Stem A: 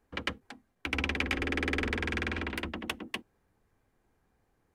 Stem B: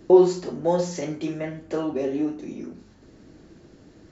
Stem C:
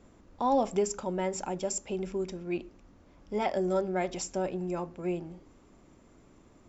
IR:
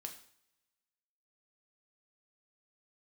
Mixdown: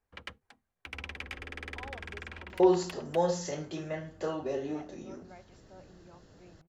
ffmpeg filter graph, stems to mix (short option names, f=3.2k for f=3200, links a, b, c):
-filter_complex "[0:a]volume=-9.5dB[a];[1:a]bandreject=f=2.3k:w=5.7,adelay=2500,volume=-3dB[b];[2:a]lowpass=3.1k,adelay=1350,volume=-19.5dB[c];[a][b][c]amix=inputs=3:normalize=0,equalizer=f=280:t=o:w=1:g=-9.5"